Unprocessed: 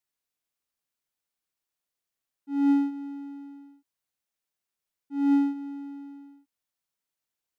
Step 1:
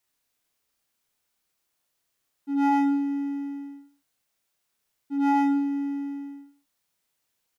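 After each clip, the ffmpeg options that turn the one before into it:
-af "aeval=exprs='0.2*sin(PI/2*2.82*val(0)/0.2)':c=same,aecho=1:1:30|64.5|104.2|149.8|202.3:0.631|0.398|0.251|0.158|0.1,volume=-5dB"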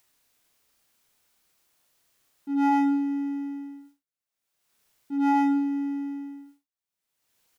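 -af "agate=range=-33dB:threshold=-50dB:ratio=3:detection=peak,acompressor=mode=upward:threshold=-38dB:ratio=2.5"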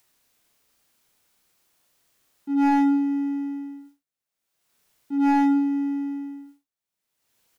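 -filter_complex "[0:a]equalizer=f=230:t=o:w=2.9:g=2,acrossover=split=450|680|1800[a][b][c][d];[c]aeval=exprs='clip(val(0),-1,0.0224)':c=same[e];[a][b][e][d]amix=inputs=4:normalize=0,volume=1.5dB"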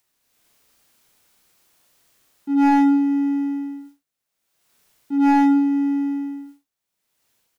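-af "dynaudnorm=f=100:g=7:m=11dB,volume=-5dB"

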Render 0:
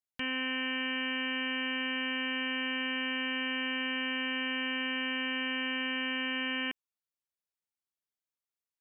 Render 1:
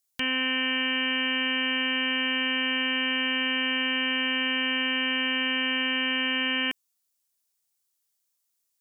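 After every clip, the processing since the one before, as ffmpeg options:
-af "bass=f=250:g=-1,treble=f=4k:g=13,volume=5.5dB"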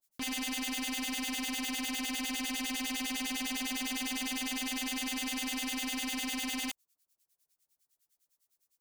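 -filter_complex "[0:a]acrossover=split=1200[a][b];[a]aeval=exprs='val(0)*(1-1/2+1/2*cos(2*PI*9.9*n/s))':c=same[c];[b]aeval=exprs='val(0)*(1-1/2-1/2*cos(2*PI*9.9*n/s))':c=same[d];[c][d]amix=inputs=2:normalize=0,aeval=exprs='0.0168*(abs(mod(val(0)/0.0168+3,4)-2)-1)':c=same,volume=4.5dB"

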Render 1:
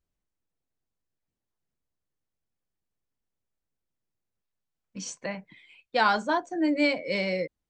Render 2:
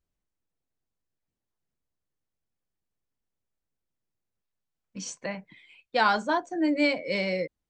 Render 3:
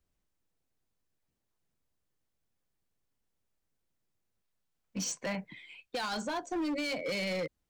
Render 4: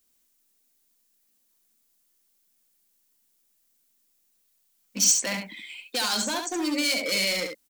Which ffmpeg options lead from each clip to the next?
-af anull
-filter_complex "[0:a]acrossover=split=140|3000[a][b][c];[b]acompressor=threshold=-31dB:ratio=6[d];[a][d][c]amix=inputs=3:normalize=0,alimiter=level_in=3dB:limit=-24dB:level=0:latency=1:release=22,volume=-3dB,asoftclip=type=hard:threshold=-33.5dB,volume=3.5dB"
-af "lowshelf=f=180:t=q:w=3:g=-7.5,crystalizer=i=7:c=0,aecho=1:1:71:0.531"

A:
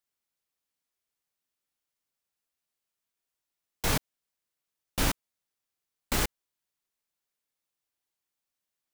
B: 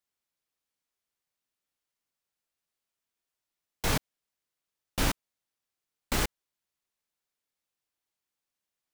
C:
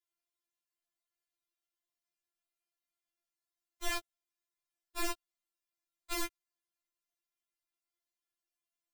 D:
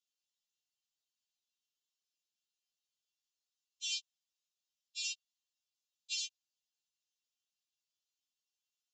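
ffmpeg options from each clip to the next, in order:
-af "highshelf=f=8.5k:g=-4"
-af "afftfilt=real='re*4*eq(mod(b,16),0)':imag='im*4*eq(mod(b,16),0)':win_size=2048:overlap=0.75,volume=-4dB"
-af "asuperpass=centerf=4500:order=20:qfactor=0.92,volume=5dB"

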